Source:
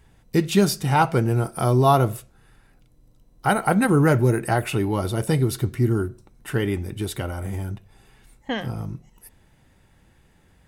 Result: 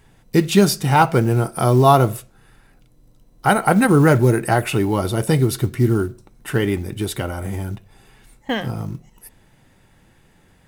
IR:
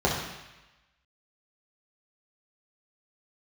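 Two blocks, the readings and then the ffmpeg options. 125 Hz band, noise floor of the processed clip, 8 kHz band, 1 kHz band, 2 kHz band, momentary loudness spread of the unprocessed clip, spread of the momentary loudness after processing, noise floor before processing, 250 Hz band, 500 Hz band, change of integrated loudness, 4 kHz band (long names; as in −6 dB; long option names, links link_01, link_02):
+3.5 dB, −55 dBFS, +4.5 dB, +4.5 dB, +4.5 dB, 15 LU, 16 LU, −58 dBFS, +4.0 dB, +4.5 dB, +4.0 dB, +4.5 dB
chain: -af "equalizer=frequency=61:width_type=o:width=0.76:gain=-9,acrusher=bits=8:mode=log:mix=0:aa=0.000001,volume=4.5dB"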